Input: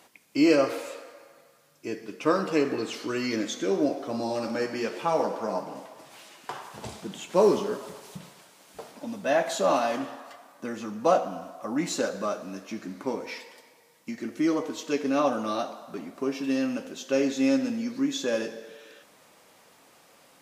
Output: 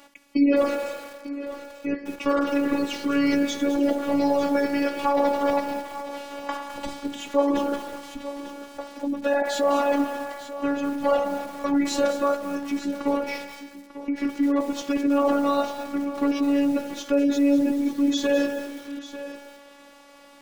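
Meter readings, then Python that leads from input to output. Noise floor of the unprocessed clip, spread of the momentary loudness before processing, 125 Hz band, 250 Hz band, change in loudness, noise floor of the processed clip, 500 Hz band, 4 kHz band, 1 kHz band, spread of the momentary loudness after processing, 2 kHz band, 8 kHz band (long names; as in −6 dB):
−58 dBFS, 17 LU, −5.5 dB, +6.0 dB, +3.0 dB, −49 dBFS, +2.5 dB, +2.0 dB, +3.5 dB, 14 LU, +3.0 dB, 0.0 dB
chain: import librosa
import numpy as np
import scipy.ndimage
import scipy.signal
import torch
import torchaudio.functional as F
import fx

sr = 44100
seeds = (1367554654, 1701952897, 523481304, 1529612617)

p1 = fx.block_float(x, sr, bits=3)
p2 = fx.spec_gate(p1, sr, threshold_db=-25, keep='strong')
p3 = fx.lowpass(p2, sr, hz=3600.0, slope=6)
p4 = fx.low_shelf(p3, sr, hz=190.0, db=3.5)
p5 = fx.over_compress(p4, sr, threshold_db=-27.0, ratio=-0.5)
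p6 = p4 + (p5 * librosa.db_to_amplitude(-0.5))
p7 = fx.robotise(p6, sr, hz=283.0)
p8 = p7 + fx.echo_single(p7, sr, ms=895, db=-14.5, dry=0)
p9 = fx.echo_crushed(p8, sr, ms=210, feedback_pct=35, bits=6, wet_db=-10.5)
y = p9 * librosa.db_to_amplitude(1.0)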